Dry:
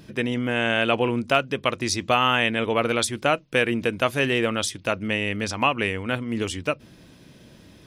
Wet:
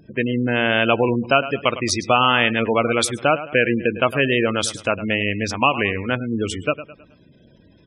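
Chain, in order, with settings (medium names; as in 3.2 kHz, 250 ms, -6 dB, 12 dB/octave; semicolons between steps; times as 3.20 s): companding laws mixed up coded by A; feedback delay 106 ms, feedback 40%, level -14 dB; spectral gate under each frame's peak -20 dB strong; trim +4.5 dB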